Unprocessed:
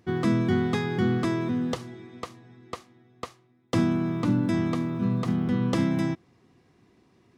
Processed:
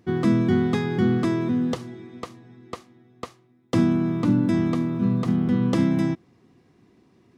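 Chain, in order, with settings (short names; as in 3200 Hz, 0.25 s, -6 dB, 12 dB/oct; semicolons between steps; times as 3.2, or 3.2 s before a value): bell 240 Hz +4.5 dB 1.9 oct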